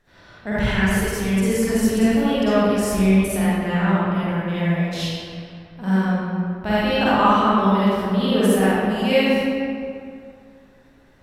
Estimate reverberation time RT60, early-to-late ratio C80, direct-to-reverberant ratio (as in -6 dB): 2.3 s, -4.0 dB, -11.0 dB